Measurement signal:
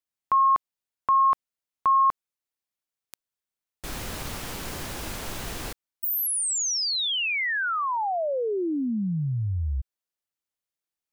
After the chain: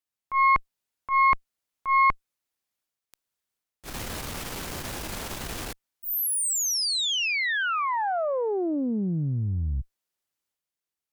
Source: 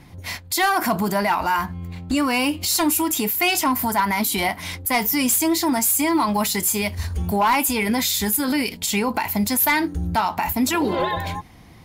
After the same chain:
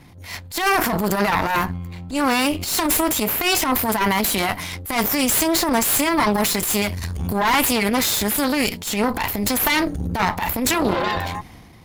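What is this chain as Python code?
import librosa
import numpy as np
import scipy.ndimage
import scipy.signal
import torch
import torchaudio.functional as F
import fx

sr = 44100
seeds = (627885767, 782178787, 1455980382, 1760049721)

y = fx.transient(x, sr, attack_db=-12, sustain_db=5)
y = fx.cheby_harmonics(y, sr, harmonics=(6,), levels_db=(-12,), full_scale_db=-4.0)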